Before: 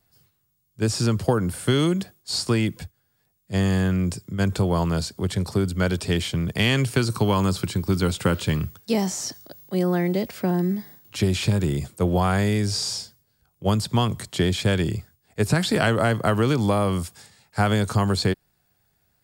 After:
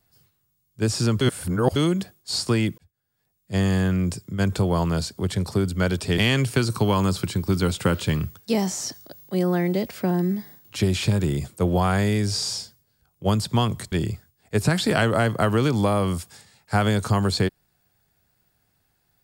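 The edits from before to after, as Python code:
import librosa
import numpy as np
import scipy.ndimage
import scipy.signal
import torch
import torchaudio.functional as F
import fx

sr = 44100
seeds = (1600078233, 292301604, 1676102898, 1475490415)

y = fx.edit(x, sr, fx.reverse_span(start_s=1.21, length_s=0.55),
    fx.fade_in_span(start_s=2.78, length_s=0.77),
    fx.cut(start_s=6.18, length_s=0.4),
    fx.cut(start_s=14.32, length_s=0.45), tone=tone)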